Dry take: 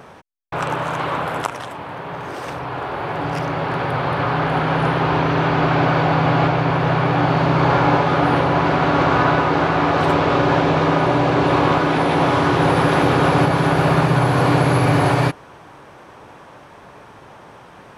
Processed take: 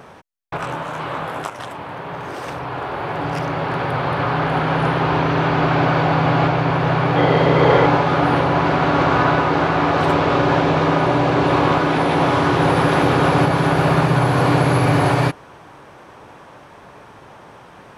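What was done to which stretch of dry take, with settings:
0.57–1.59 detuned doubles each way 53 cents
7.16–7.86 small resonant body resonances 470/2000/3200 Hz, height 13 dB, ringing for 35 ms

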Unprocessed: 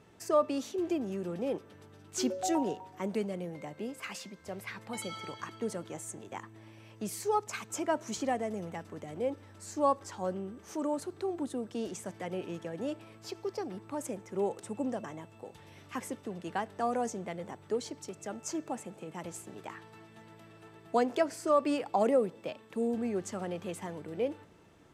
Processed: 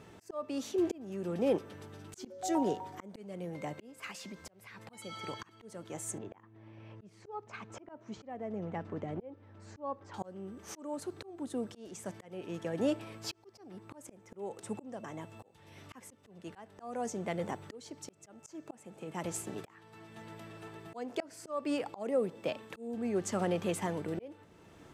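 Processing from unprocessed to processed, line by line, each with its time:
2.17–3.18 notch 2700 Hz
4.11–4.8 compressor 4:1, threshold -44 dBFS
6.18–10.14 tape spacing loss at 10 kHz 29 dB
whole clip: auto swell 0.646 s; gain +5.5 dB

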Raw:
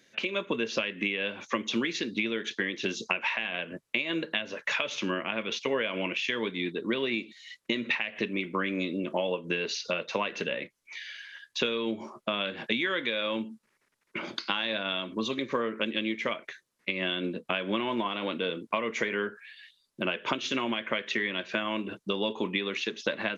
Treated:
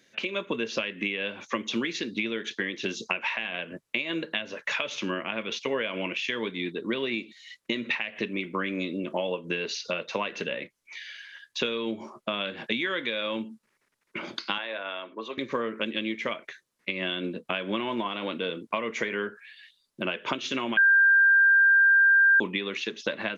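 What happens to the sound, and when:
14.58–15.38 three-band isolator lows -22 dB, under 360 Hz, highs -16 dB, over 2700 Hz
20.77–22.4 bleep 1590 Hz -15.5 dBFS

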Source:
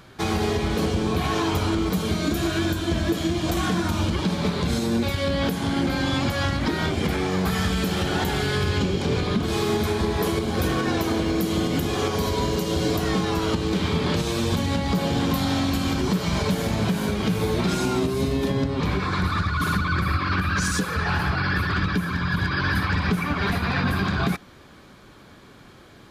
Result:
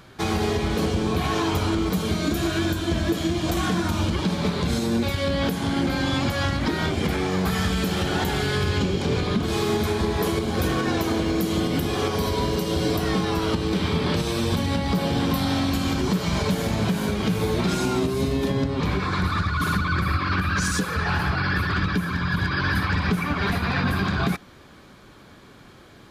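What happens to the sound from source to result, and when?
11.6–15.73 notch 6800 Hz, Q 8.5

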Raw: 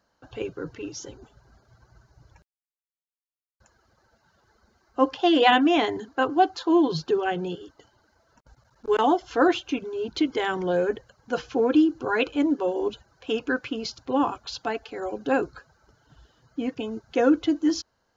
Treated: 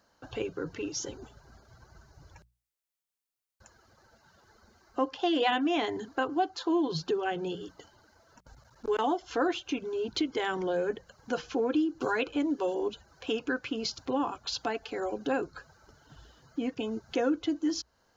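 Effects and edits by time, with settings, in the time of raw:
12.01–12.75 three-band squash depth 70%
whole clip: compressor 2:1, threshold -36 dBFS; high shelf 5300 Hz +4 dB; notches 60/120/180 Hz; gain +2.5 dB

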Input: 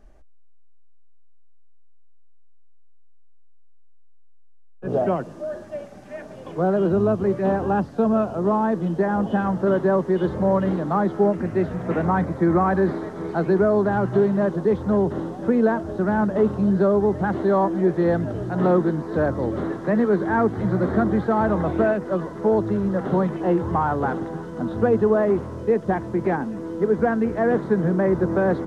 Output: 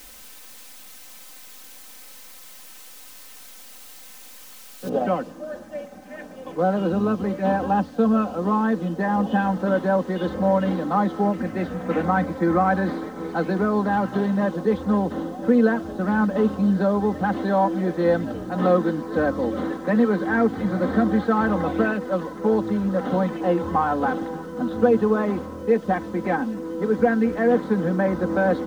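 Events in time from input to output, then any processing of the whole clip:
4.89 noise floor step -45 dB -64 dB
whole clip: low shelf 65 Hz -8 dB; comb 3.9 ms, depth 74%; dynamic EQ 3600 Hz, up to +6 dB, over -45 dBFS, Q 0.94; gain -1.5 dB

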